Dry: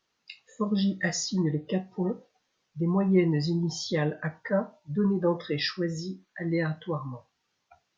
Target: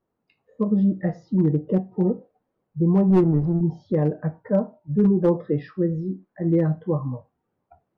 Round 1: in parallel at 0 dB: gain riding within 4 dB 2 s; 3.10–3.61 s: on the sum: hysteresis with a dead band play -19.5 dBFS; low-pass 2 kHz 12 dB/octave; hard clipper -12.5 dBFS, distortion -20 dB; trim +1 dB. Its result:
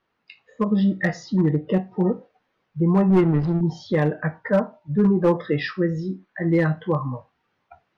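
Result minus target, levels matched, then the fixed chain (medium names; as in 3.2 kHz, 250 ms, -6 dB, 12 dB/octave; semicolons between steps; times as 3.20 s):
2 kHz band +15.0 dB
in parallel at 0 dB: gain riding within 4 dB 2 s; 3.10–3.61 s: on the sum: hysteresis with a dead band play -19.5 dBFS; low-pass 620 Hz 12 dB/octave; hard clipper -12.5 dBFS, distortion -21 dB; trim +1 dB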